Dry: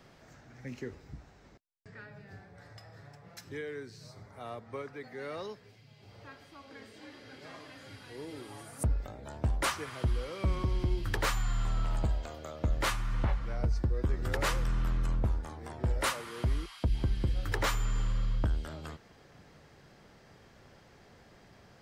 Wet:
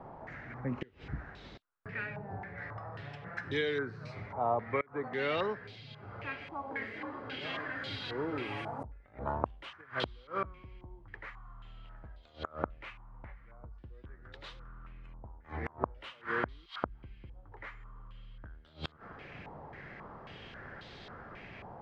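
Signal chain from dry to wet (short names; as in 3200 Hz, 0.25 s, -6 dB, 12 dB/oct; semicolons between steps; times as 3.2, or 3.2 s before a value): flipped gate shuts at -30 dBFS, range -27 dB; stepped low-pass 3.7 Hz 900–3700 Hz; gain +6.5 dB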